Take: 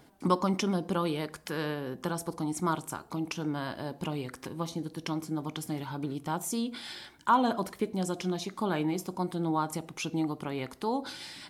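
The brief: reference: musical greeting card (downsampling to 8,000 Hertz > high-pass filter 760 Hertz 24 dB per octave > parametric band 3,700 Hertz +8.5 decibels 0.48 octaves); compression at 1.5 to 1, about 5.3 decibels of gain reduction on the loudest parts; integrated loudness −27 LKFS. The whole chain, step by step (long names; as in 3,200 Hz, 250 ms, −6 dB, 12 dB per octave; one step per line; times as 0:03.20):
downward compressor 1.5 to 1, threshold −34 dBFS
downsampling to 8,000 Hz
high-pass filter 760 Hz 24 dB per octave
parametric band 3,700 Hz +8.5 dB 0.48 octaves
level +13.5 dB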